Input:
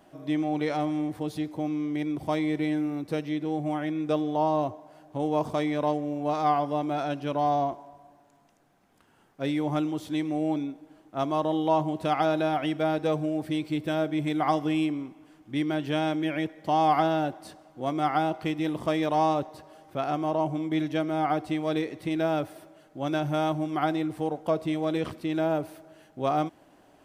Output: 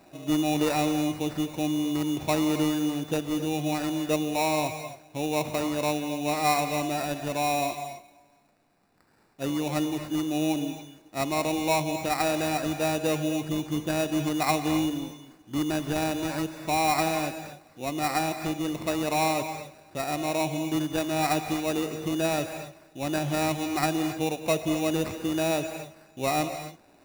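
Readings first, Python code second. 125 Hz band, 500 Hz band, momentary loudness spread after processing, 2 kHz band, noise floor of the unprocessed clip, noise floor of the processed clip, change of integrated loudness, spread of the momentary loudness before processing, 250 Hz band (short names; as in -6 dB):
+0.5 dB, -0.5 dB, 10 LU, +4.5 dB, -60 dBFS, -58 dBFS, +0.5 dB, 7 LU, 0.0 dB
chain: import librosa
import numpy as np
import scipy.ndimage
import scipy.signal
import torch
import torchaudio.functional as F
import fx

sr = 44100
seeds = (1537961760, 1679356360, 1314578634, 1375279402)

y = fx.sample_hold(x, sr, seeds[0], rate_hz=3200.0, jitter_pct=0)
y = fx.rider(y, sr, range_db=10, speed_s=2.0)
y = fx.rev_gated(y, sr, seeds[1], gate_ms=300, shape='rising', drr_db=8.5)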